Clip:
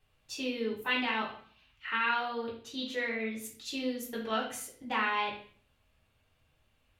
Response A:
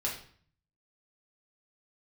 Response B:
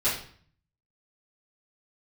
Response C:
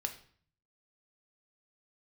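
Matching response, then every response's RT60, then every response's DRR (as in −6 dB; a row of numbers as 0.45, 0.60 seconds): A; 0.50, 0.50, 0.50 seconds; −4.5, −13.5, 5.0 decibels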